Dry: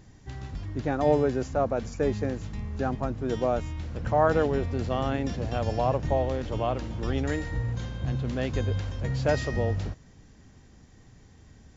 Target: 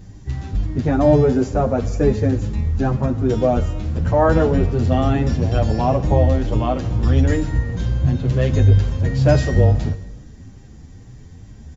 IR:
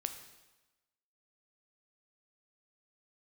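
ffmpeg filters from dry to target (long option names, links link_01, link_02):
-filter_complex "[0:a]lowshelf=frequency=340:gain=10,asplit=2[link_01][link_02];[1:a]atrim=start_sample=2205,highshelf=frequency=5500:gain=7[link_03];[link_02][link_03]afir=irnorm=-1:irlink=0,volume=3dB[link_04];[link_01][link_04]amix=inputs=2:normalize=0,asplit=2[link_05][link_06];[link_06]adelay=8.6,afreqshift=2.2[link_07];[link_05][link_07]amix=inputs=2:normalize=1"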